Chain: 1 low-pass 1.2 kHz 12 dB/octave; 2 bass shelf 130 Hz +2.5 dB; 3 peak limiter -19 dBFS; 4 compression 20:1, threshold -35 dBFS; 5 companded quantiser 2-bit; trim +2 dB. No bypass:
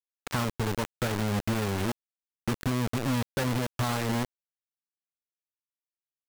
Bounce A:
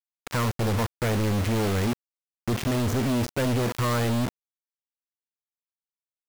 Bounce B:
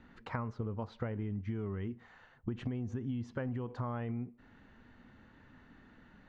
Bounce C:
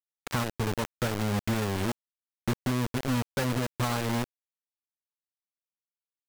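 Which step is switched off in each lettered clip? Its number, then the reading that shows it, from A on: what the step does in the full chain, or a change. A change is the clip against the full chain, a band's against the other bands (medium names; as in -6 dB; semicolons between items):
4, mean gain reduction 6.5 dB; 5, distortion -4 dB; 3, mean gain reduction 2.0 dB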